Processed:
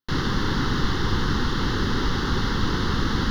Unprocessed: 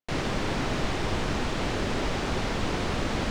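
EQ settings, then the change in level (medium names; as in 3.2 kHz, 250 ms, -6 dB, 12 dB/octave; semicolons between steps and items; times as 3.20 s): static phaser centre 2.4 kHz, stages 6; +7.0 dB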